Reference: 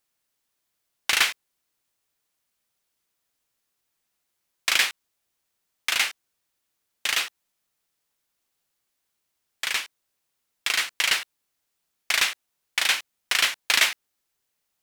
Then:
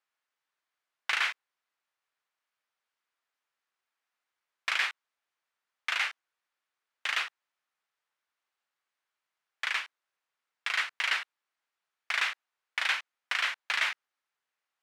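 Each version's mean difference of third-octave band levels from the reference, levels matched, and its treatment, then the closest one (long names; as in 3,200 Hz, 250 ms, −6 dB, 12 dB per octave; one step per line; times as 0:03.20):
6.5 dB: brickwall limiter −11.5 dBFS, peak gain reduction 7 dB
resonant band-pass 1,400 Hz, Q 1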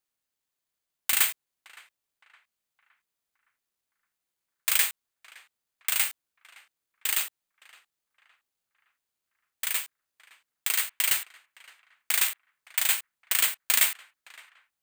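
5.0 dB: bad sample-rate conversion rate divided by 4×, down filtered, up zero stuff
on a send: feedback echo with a band-pass in the loop 565 ms, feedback 45%, band-pass 1,300 Hz, level −19.5 dB
on the sum: level −7.5 dB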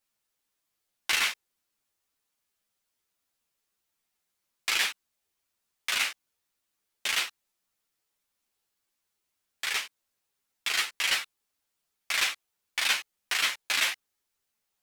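2.0 dB: brickwall limiter −10 dBFS, peak gain reduction 5.5 dB
string-ensemble chorus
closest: third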